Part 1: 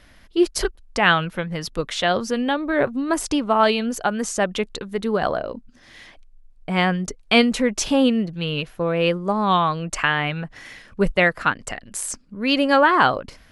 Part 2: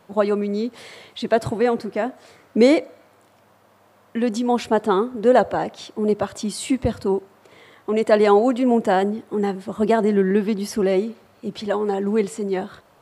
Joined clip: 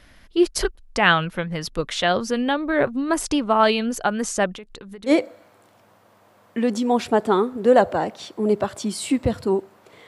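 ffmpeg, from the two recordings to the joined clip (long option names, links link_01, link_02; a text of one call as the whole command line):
ffmpeg -i cue0.wav -i cue1.wav -filter_complex "[0:a]asettb=1/sr,asplit=3[link_01][link_02][link_03];[link_01]atrim=end=4.524[link_04];[link_02]atrim=start=4.52:end=5.12,asetpts=PTS-STARTPTS,afade=type=in:duration=0.004:curve=qsin,afade=type=out:start_time=0.596:duration=0.004:curve=qsin,acompressor=threshold=-35dB:ratio=8:attack=3.2:release=140:knee=1:detection=peak[link_05];[link_03]atrim=start=5.116[link_06];[link_04][link_05]acrossfade=duration=0.004:curve1=hsin:curve2=qsin[link_07];[link_07][link_06]acrossfade=duration=0.004:curve1=qsin:curve2=hsin,apad=whole_dur=10.07,atrim=end=10.07,atrim=end=5.12,asetpts=PTS-STARTPTS[link_08];[1:a]atrim=start=2.65:end=7.66,asetpts=PTS-STARTPTS[link_09];[link_08][link_09]acrossfade=duration=0.06:curve1=tri:curve2=tri" out.wav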